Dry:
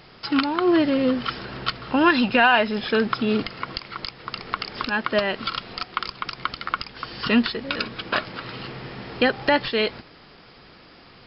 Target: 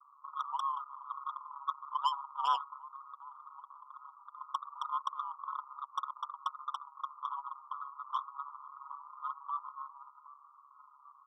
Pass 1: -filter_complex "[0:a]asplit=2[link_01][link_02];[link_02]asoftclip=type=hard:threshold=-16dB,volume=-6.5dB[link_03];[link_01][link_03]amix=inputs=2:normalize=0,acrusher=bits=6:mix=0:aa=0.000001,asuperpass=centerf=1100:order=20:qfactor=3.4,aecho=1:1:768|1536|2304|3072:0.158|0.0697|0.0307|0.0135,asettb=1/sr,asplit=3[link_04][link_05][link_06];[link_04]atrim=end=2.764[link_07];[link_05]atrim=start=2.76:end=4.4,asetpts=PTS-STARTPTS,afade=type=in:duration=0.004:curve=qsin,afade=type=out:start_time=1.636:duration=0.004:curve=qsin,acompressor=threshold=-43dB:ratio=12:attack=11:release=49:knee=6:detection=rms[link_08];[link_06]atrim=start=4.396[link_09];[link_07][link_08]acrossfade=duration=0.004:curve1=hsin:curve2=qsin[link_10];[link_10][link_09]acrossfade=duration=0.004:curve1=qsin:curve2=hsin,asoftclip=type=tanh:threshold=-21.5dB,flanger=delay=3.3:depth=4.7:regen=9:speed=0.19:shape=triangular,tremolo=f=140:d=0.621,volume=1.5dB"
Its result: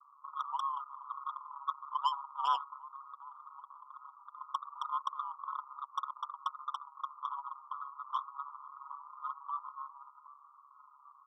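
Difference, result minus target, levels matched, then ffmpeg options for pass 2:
hard clipping: distortion +12 dB
-filter_complex "[0:a]asplit=2[link_01][link_02];[link_02]asoftclip=type=hard:threshold=-10dB,volume=-6.5dB[link_03];[link_01][link_03]amix=inputs=2:normalize=0,acrusher=bits=6:mix=0:aa=0.000001,asuperpass=centerf=1100:order=20:qfactor=3.4,aecho=1:1:768|1536|2304|3072:0.158|0.0697|0.0307|0.0135,asettb=1/sr,asplit=3[link_04][link_05][link_06];[link_04]atrim=end=2.764[link_07];[link_05]atrim=start=2.76:end=4.4,asetpts=PTS-STARTPTS,afade=type=in:duration=0.004:curve=qsin,afade=type=out:start_time=1.636:duration=0.004:curve=qsin,acompressor=threshold=-43dB:ratio=12:attack=11:release=49:knee=6:detection=rms[link_08];[link_06]atrim=start=4.396[link_09];[link_07][link_08]acrossfade=duration=0.004:curve1=hsin:curve2=qsin[link_10];[link_10][link_09]acrossfade=duration=0.004:curve1=qsin:curve2=hsin,asoftclip=type=tanh:threshold=-21.5dB,flanger=delay=3.3:depth=4.7:regen=9:speed=0.19:shape=triangular,tremolo=f=140:d=0.621,volume=1.5dB"

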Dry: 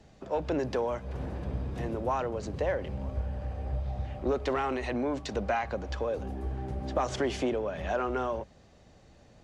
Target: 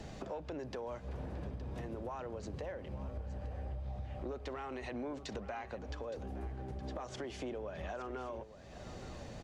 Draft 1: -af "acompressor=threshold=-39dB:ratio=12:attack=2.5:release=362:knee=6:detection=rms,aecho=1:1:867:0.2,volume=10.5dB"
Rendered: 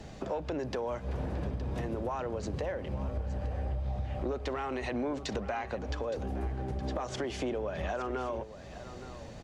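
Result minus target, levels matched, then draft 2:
downward compressor: peak gain reduction −8 dB
-af "acompressor=threshold=-47.5dB:ratio=12:attack=2.5:release=362:knee=6:detection=rms,aecho=1:1:867:0.2,volume=10.5dB"

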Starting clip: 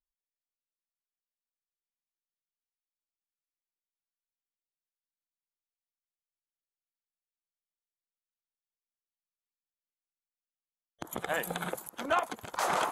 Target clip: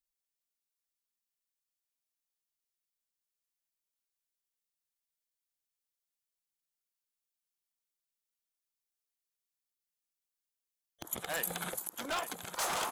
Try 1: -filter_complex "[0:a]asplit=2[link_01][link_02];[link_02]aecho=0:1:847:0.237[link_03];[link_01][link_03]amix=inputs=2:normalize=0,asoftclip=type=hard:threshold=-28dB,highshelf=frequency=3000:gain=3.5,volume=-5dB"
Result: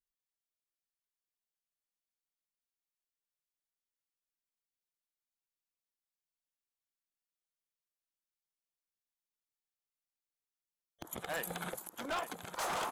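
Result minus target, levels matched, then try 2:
8,000 Hz band −4.0 dB
-filter_complex "[0:a]asplit=2[link_01][link_02];[link_02]aecho=0:1:847:0.237[link_03];[link_01][link_03]amix=inputs=2:normalize=0,asoftclip=type=hard:threshold=-28dB,highshelf=frequency=3000:gain=11.5,volume=-5dB"

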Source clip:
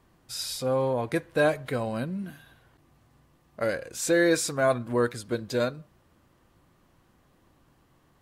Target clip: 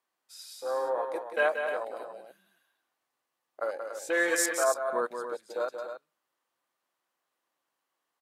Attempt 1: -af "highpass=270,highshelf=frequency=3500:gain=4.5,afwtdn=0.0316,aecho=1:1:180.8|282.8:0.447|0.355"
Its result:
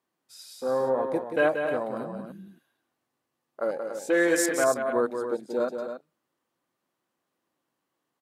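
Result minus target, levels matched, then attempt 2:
250 Hz band +8.5 dB
-af "highpass=650,highshelf=frequency=3500:gain=4.5,afwtdn=0.0316,aecho=1:1:180.8|282.8:0.447|0.355"

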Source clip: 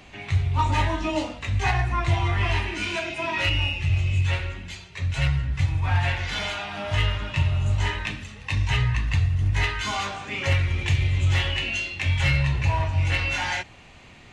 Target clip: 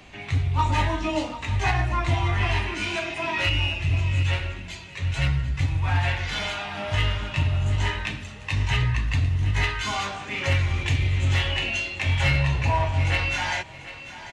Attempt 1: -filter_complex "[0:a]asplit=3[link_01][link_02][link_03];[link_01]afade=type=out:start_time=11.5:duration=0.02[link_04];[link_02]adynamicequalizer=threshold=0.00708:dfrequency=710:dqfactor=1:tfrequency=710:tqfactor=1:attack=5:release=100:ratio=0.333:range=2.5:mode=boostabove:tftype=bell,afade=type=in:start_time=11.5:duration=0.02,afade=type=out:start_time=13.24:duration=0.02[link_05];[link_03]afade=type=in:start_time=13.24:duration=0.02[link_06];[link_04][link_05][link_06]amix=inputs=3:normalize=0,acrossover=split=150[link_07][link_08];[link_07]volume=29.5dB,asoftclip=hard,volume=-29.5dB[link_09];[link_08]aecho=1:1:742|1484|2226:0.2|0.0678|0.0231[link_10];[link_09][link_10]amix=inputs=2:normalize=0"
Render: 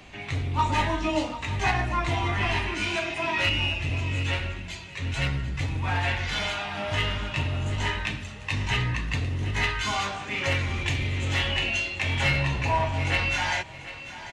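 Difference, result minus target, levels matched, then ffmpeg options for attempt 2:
gain into a clipping stage and back: distortion +12 dB
-filter_complex "[0:a]asplit=3[link_01][link_02][link_03];[link_01]afade=type=out:start_time=11.5:duration=0.02[link_04];[link_02]adynamicequalizer=threshold=0.00708:dfrequency=710:dqfactor=1:tfrequency=710:tqfactor=1:attack=5:release=100:ratio=0.333:range=2.5:mode=boostabove:tftype=bell,afade=type=in:start_time=11.5:duration=0.02,afade=type=out:start_time=13.24:duration=0.02[link_05];[link_03]afade=type=in:start_time=13.24:duration=0.02[link_06];[link_04][link_05][link_06]amix=inputs=3:normalize=0,acrossover=split=150[link_07][link_08];[link_07]volume=19.5dB,asoftclip=hard,volume=-19.5dB[link_09];[link_08]aecho=1:1:742|1484|2226:0.2|0.0678|0.0231[link_10];[link_09][link_10]amix=inputs=2:normalize=0"

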